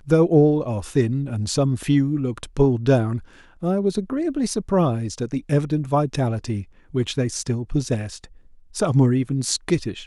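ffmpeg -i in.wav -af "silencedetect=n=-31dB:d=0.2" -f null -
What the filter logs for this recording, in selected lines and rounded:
silence_start: 3.19
silence_end: 3.63 | silence_duration: 0.43
silence_start: 6.62
silence_end: 6.94 | silence_duration: 0.32
silence_start: 8.24
silence_end: 8.75 | silence_duration: 0.51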